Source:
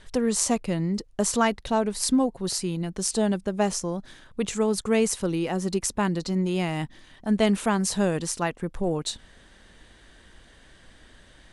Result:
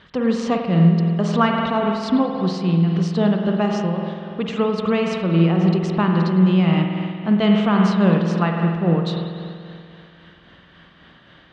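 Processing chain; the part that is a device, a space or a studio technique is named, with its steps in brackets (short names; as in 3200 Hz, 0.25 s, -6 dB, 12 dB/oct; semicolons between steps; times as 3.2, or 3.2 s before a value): combo amplifier with spring reverb and tremolo (spring tank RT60 2.4 s, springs 48 ms, chirp 60 ms, DRR 1.5 dB; tremolo 3.7 Hz, depth 30%; speaker cabinet 87–4200 Hz, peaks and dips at 170 Hz +10 dB, 1200 Hz +8 dB, 3000 Hz +4 dB); gain +3 dB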